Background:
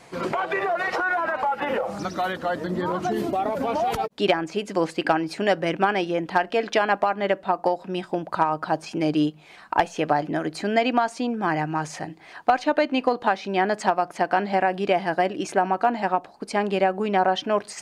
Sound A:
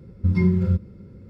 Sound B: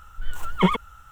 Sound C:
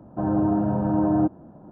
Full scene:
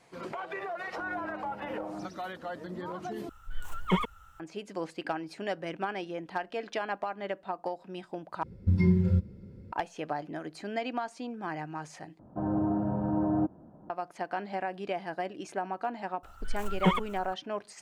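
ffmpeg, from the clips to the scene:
-filter_complex "[3:a]asplit=2[a][b];[2:a]asplit=2[c][d];[0:a]volume=-12.5dB[e];[a]equalizer=f=130:w=0.69:g=-13[f];[1:a]equalizer=f=1.2k:t=o:w=0.22:g=-13[g];[d]aecho=1:1:504:0.237[h];[e]asplit=4[i][j][k][l];[i]atrim=end=3.294[m];[c]atrim=end=1.11,asetpts=PTS-STARTPTS,volume=-7.5dB[n];[j]atrim=start=4.396:end=8.434[o];[g]atrim=end=1.29,asetpts=PTS-STARTPTS,volume=-4.5dB[p];[k]atrim=start=9.716:end=12.194[q];[b]atrim=end=1.71,asetpts=PTS-STARTPTS,volume=-7dB[r];[l]atrim=start=13.896[s];[f]atrim=end=1.71,asetpts=PTS-STARTPTS,volume=-16dB,afade=t=in:d=0.004:c=hsin,afade=t=out:st=1.706:d=0.004:c=hsin,adelay=790[t];[h]atrim=end=1.11,asetpts=PTS-STARTPTS,volume=-5.5dB,afade=t=in:d=0.004:c=hsin,afade=t=out:st=1.106:d=0.004:c=hsin,adelay=16230[u];[m][n]acrossfade=d=0.004:c1=hsin:c2=hsin[v];[v][o]acrossfade=d=0.004:c1=hsin:c2=hsin[w];[w][p]acrossfade=d=0.004:c1=hsin:c2=hsin[x];[x][q]acrossfade=d=0.004:c1=hsin:c2=hsin[y];[y][r]acrossfade=d=0.004:c1=hsin:c2=hsin[z];[z][s]acrossfade=d=0.004:c1=hsin:c2=hsin[aa];[aa][t][u]amix=inputs=3:normalize=0"

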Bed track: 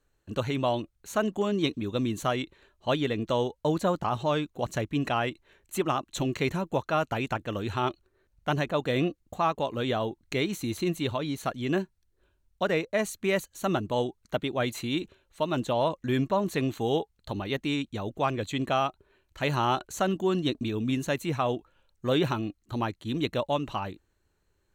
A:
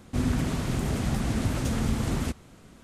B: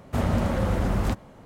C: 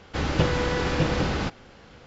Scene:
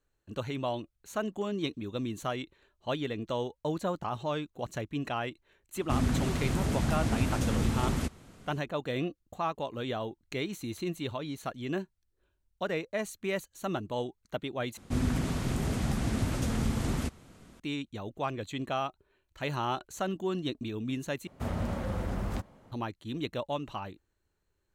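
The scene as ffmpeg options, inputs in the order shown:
-filter_complex "[1:a]asplit=2[a][b];[0:a]volume=-6dB,asplit=3[c][d][e];[c]atrim=end=14.774[f];[b]atrim=end=2.83,asetpts=PTS-STARTPTS,volume=-3dB[g];[d]atrim=start=17.596:end=21.274[h];[2:a]atrim=end=1.45,asetpts=PTS-STARTPTS,volume=-9dB[i];[e]atrim=start=22.716[j];[a]atrim=end=2.83,asetpts=PTS-STARTPTS,volume=-2dB,afade=t=in:d=0.004:c=hsin,afade=t=out:st=2.826:d=0.004:c=hsin,adelay=5760[k];[f][g]acrossfade=d=0.004:c1=hsin:c2=hsin[l];[l][h]acrossfade=d=0.004:c1=hsin:c2=hsin[m];[m][i]acrossfade=d=0.004:c1=hsin:c2=hsin[n];[n][j]acrossfade=d=0.004:c1=hsin:c2=hsin[o];[o][k]amix=inputs=2:normalize=0"

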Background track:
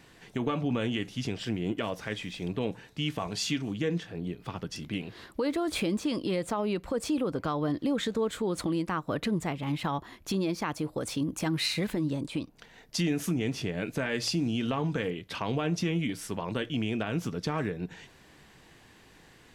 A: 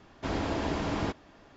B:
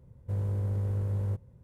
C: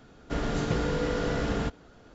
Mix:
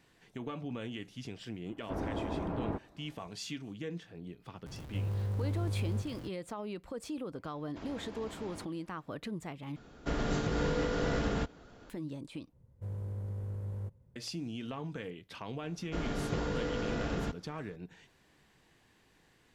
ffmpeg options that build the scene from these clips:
-filter_complex "[1:a]asplit=2[a][b];[2:a]asplit=2[c][d];[3:a]asplit=2[e][f];[0:a]volume=-10.5dB[g];[a]lowpass=1.1k[h];[c]aeval=exprs='val(0)+0.5*0.0133*sgn(val(0))':c=same[i];[b]alimiter=level_in=2dB:limit=-24dB:level=0:latency=1:release=61,volume=-2dB[j];[e]alimiter=limit=-20dB:level=0:latency=1:release=151[k];[g]asplit=3[l][m][n];[l]atrim=end=9.764[o];[k]atrim=end=2.14,asetpts=PTS-STARTPTS,volume=-1.5dB[p];[m]atrim=start=11.896:end=12.534[q];[d]atrim=end=1.63,asetpts=PTS-STARTPTS,volume=-8.5dB[r];[n]atrim=start=14.156[s];[h]atrim=end=1.56,asetpts=PTS-STARTPTS,volume=-4.5dB,afade=t=in:d=0.004:c=hsin,afade=t=out:st=1.556:d=0.004:c=hsin,adelay=1660[t];[i]atrim=end=1.63,asetpts=PTS-STARTPTS,volume=-5dB,afade=t=in:d=0.004:c=hsin,afade=t=out:st=1.626:d=0.004:c=hsin,adelay=4660[u];[j]atrim=end=1.56,asetpts=PTS-STARTPTS,volume=-12.5dB,afade=t=in:d=0.004:c=hsin,afade=t=out:st=1.556:d=0.004:c=hsin,adelay=7530[v];[f]atrim=end=2.14,asetpts=PTS-STARTPTS,volume=-6.5dB,afade=t=in:d=0.004:c=hsin,afade=t=out:st=2.136:d=0.004:c=hsin,adelay=15620[w];[o][p]acrossfade=d=0.004:c1=hsin:c2=hsin[x];[x][q]acrossfade=d=0.004:c1=hsin:c2=hsin[y];[y][r]acrossfade=d=0.004:c1=hsin:c2=hsin[z];[z][s]acrossfade=d=0.004:c1=hsin:c2=hsin[aa];[aa][t][u][v][w]amix=inputs=5:normalize=0"

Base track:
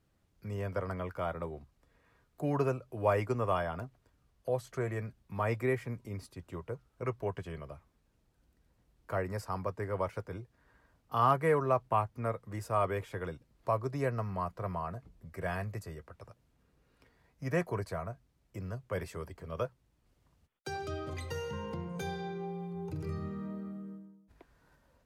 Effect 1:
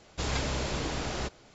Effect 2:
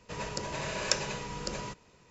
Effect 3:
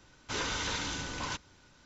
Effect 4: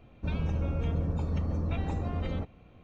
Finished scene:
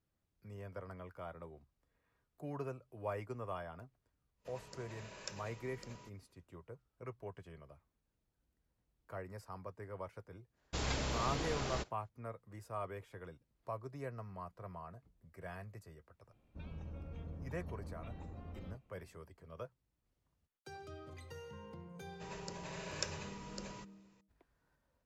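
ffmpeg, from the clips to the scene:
-filter_complex "[2:a]asplit=2[a][b];[0:a]volume=-12dB[c];[1:a]agate=range=-33dB:threshold=-46dB:ratio=3:release=100:detection=peak[d];[a]atrim=end=2.1,asetpts=PTS-STARTPTS,volume=-18dB,afade=t=in:d=0.1,afade=t=out:st=2:d=0.1,adelay=4360[e];[d]atrim=end=1.54,asetpts=PTS-STARTPTS,volume=-6dB,afade=t=in:d=0.004:c=hsin,afade=t=out:st=1.536:d=0.004:c=hsin,adelay=10550[f];[4:a]atrim=end=2.83,asetpts=PTS-STARTPTS,volume=-17dB,afade=t=in:d=0.004:c=hsin,afade=t=out:st=2.826:d=0.004:c=hsin,adelay=16320[g];[b]atrim=end=2.1,asetpts=PTS-STARTPTS,volume=-11.5dB,afade=t=in:d=0.004:c=hsin,afade=t=out:st=2.096:d=0.004:c=hsin,adelay=22110[h];[c][e][f][g][h]amix=inputs=5:normalize=0"

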